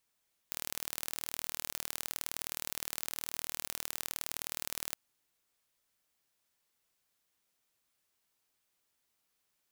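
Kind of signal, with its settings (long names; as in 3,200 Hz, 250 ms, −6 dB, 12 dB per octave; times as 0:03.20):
impulse train 39 per second, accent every 2, −8 dBFS 4.42 s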